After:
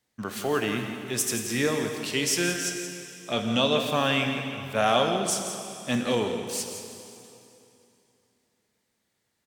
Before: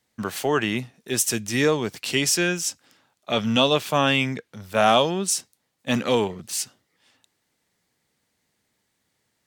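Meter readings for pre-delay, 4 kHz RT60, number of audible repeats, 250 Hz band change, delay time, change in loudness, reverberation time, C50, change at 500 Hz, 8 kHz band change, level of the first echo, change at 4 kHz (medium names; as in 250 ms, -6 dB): 7 ms, 2.7 s, 1, -3.0 dB, 173 ms, -4.0 dB, 2.9 s, 4.5 dB, -3.5 dB, -3.5 dB, -10.0 dB, -3.5 dB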